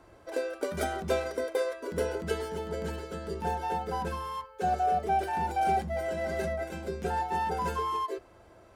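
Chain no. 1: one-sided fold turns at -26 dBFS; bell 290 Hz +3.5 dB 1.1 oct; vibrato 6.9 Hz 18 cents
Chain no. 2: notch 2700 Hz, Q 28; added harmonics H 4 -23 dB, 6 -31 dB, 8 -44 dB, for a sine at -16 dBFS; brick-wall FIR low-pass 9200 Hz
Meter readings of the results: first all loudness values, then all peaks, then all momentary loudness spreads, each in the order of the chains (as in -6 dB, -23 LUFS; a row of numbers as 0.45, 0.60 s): -32.0, -32.0 LUFS; -15.5, -16.0 dBFS; 6, 8 LU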